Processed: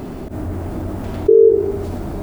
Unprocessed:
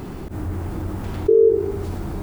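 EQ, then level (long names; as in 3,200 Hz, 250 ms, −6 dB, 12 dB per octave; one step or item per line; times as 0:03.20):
thirty-one-band graphic EQ 250 Hz +7 dB, 400 Hz +3 dB, 630 Hz +10 dB
+1.0 dB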